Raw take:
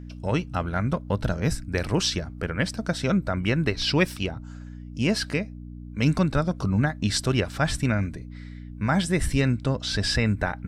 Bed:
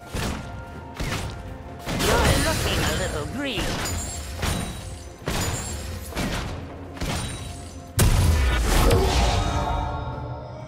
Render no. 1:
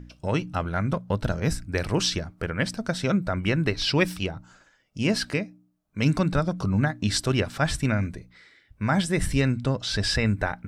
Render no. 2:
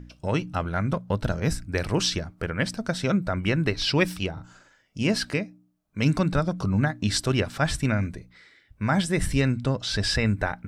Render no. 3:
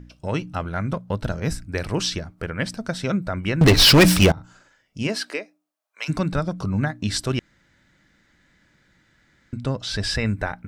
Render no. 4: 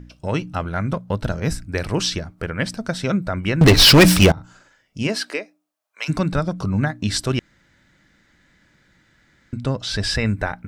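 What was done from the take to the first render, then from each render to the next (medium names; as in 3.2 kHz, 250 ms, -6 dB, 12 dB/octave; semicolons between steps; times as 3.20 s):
de-hum 60 Hz, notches 5
4.33–5.03 s: doubling 43 ms -3.5 dB
3.61–4.32 s: waveshaping leveller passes 5; 5.07–6.08 s: high-pass 230 Hz -> 780 Hz 24 dB/octave; 7.39–9.53 s: room tone
trim +2.5 dB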